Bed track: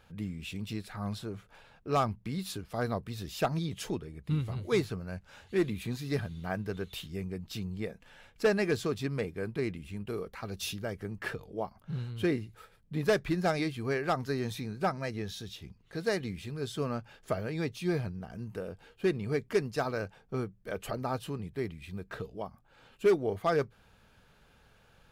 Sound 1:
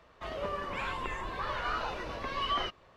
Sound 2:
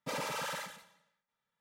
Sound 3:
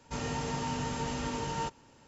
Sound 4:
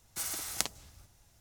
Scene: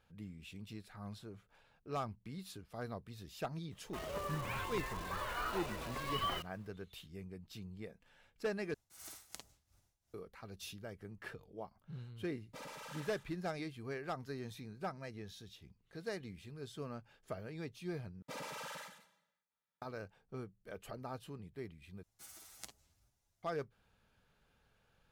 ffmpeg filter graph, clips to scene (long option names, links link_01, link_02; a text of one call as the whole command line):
ffmpeg -i bed.wav -i cue0.wav -i cue1.wav -i cue2.wav -i cue3.wav -filter_complex "[4:a]asplit=2[link_01][link_02];[2:a]asplit=2[link_03][link_04];[0:a]volume=-11.5dB[link_05];[1:a]acrusher=bits=8:dc=4:mix=0:aa=0.000001[link_06];[link_01]tremolo=f=2.8:d=0.8[link_07];[link_02]asplit=2[link_08][link_09];[link_09]adelay=8.7,afreqshift=2.3[link_10];[link_08][link_10]amix=inputs=2:normalize=1[link_11];[link_05]asplit=4[link_12][link_13][link_14][link_15];[link_12]atrim=end=8.744[link_16];[link_07]atrim=end=1.4,asetpts=PTS-STARTPTS,volume=-12.5dB[link_17];[link_13]atrim=start=10.136:end=18.224[link_18];[link_04]atrim=end=1.6,asetpts=PTS-STARTPTS,volume=-8.5dB[link_19];[link_14]atrim=start=19.816:end=22.034[link_20];[link_11]atrim=end=1.4,asetpts=PTS-STARTPTS,volume=-15.5dB[link_21];[link_15]atrim=start=23.426[link_22];[link_06]atrim=end=2.96,asetpts=PTS-STARTPTS,volume=-6dB,afade=type=in:duration=0.004:curve=hsin,afade=type=out:start_time=2.956:duration=0.004:curve=hsin,adelay=3720[link_23];[link_03]atrim=end=1.6,asetpts=PTS-STARTPTS,volume=-12.5dB,afade=type=in:duration=0.004:curve=hsin,afade=type=out:start_time=1.596:duration=0.004:curve=hsin,adelay=12470[link_24];[link_16][link_17]acrossfade=duration=0.004:curve1=hsin:curve2=hsin[link_25];[link_25][link_18]acrossfade=duration=0.004:curve1=hsin:curve2=hsin[link_26];[link_26][link_19]acrossfade=duration=0.004:curve1=hsin:curve2=hsin[link_27];[link_27][link_20]acrossfade=duration=0.004:curve1=hsin:curve2=hsin[link_28];[link_28][link_21]acrossfade=duration=0.004:curve1=hsin:curve2=hsin[link_29];[link_29][link_22]acrossfade=duration=0.004:curve1=hsin:curve2=hsin[link_30];[link_30][link_23][link_24]amix=inputs=3:normalize=0" out.wav